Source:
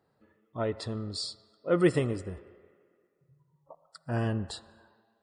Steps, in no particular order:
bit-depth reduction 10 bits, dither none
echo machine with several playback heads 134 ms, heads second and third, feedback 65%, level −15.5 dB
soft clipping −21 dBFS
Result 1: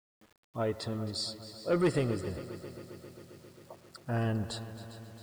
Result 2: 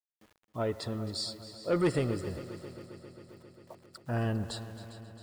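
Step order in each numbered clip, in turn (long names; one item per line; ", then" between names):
soft clipping, then echo machine with several playback heads, then bit-depth reduction
bit-depth reduction, then soft clipping, then echo machine with several playback heads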